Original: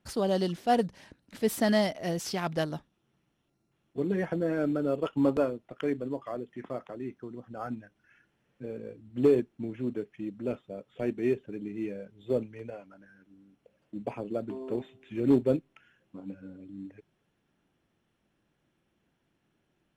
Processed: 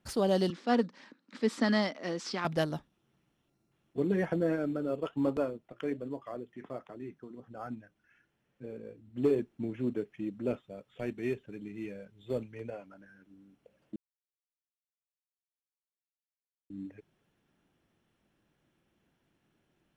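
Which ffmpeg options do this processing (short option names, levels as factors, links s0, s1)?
-filter_complex "[0:a]asettb=1/sr,asplit=3[s0][s1][s2];[s0]atrim=end=0.504[s3];[s1]atrim=start=0.5:end=2.45,asetpts=PTS-STARTPTS,afade=t=in:d=0.004:c=qsin,afade=t=out:st=1.946:d=0.004:c=qsin,highpass=f=220:w=0.5412,highpass=f=220:w=1.3066,equalizer=f=240:t=q:w=4:g=4,equalizer=f=390:t=q:w=4:g=-4,equalizer=f=680:t=q:w=4:g=-9,equalizer=f=1200:t=q:w=4:g=5,equalizer=f=2900:t=q:w=4:g=-4,equalizer=f=6200:t=q:w=4:g=-5,lowpass=f=6600:w=0.5412,lowpass=f=6600:w=1.3066[s4];[s2]atrim=start=2.446[s5];[s3][s4]acrossfade=d=0.004:c1=hsin:c2=qsin[s6];[s6][s5]acrossfade=d=0.004:c1=qsin:c2=hsin,asplit=3[s7][s8][s9];[s7]afade=t=out:st=4.55:d=0.02[s10];[s8]flanger=delay=0.9:depth=3.4:regen=-87:speed=1.3:shape=sinusoidal,afade=t=in:st=4.55:d=0.02,afade=t=out:st=9.4:d=0.02[s11];[s9]afade=t=in:st=9.4:d=0.02[s12];[s10][s11][s12]amix=inputs=3:normalize=0,asettb=1/sr,asplit=3[s13][s14][s15];[s13]atrim=end=10.604[s16];[s14]atrim=start=10.6:end=12.53,asetpts=PTS-STARTPTS,afade=t=in:d=0.004:c=qsin,afade=t=out:st=1.926:d=0.004:c=qsin,equalizer=f=360:w=0.53:g=-6.5[s17];[s15]atrim=start=12.526[s18];[s16][s17]acrossfade=d=0.004:c1=hsin:c2=qsin[s19];[s19][s18]acrossfade=d=0.004:c1=qsin:c2=hsin,asplit=3[s20][s21][s22];[s20]atrim=end=13.96,asetpts=PTS-STARTPTS,afade=t=out:st=13.956:d=0.004:c=hsin[s23];[s21]atrim=start=13.96:end=16.7,asetpts=PTS-STARTPTS,volume=0[s24];[s22]atrim=start=16.7,asetpts=PTS-STARTPTS,afade=t=in:d=0.004:c=hsin[s25];[s23][s24][s25]concat=n=3:v=0:a=1"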